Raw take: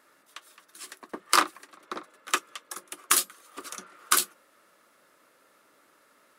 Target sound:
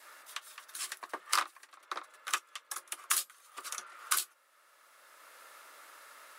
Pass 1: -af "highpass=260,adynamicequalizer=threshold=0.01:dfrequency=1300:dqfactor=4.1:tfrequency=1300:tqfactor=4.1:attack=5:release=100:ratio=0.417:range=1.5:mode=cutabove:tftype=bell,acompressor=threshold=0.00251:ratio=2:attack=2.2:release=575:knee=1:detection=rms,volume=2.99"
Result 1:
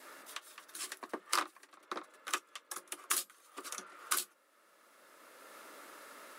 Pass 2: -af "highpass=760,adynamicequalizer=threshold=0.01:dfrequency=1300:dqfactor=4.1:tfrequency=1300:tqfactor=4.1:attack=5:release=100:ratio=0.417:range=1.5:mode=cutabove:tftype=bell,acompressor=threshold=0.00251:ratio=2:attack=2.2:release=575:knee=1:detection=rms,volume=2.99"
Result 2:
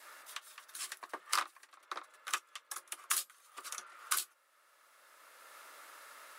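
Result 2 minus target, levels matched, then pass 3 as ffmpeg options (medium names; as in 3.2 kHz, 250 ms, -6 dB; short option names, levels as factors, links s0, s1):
compression: peak gain reduction +3.5 dB
-af "highpass=760,adynamicequalizer=threshold=0.01:dfrequency=1300:dqfactor=4.1:tfrequency=1300:tqfactor=4.1:attack=5:release=100:ratio=0.417:range=1.5:mode=cutabove:tftype=bell,acompressor=threshold=0.00531:ratio=2:attack=2.2:release=575:knee=1:detection=rms,volume=2.99"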